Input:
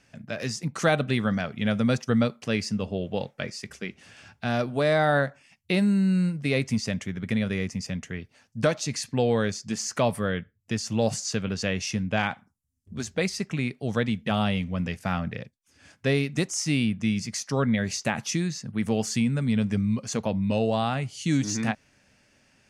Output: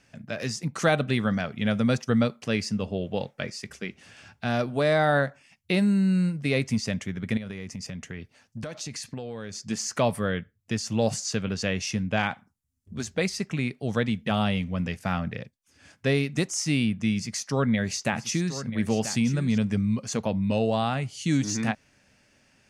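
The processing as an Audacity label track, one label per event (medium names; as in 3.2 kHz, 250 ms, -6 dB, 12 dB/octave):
7.370000	9.690000	compression 10:1, threshold -31 dBFS
17.140000	19.580000	delay 985 ms -11.5 dB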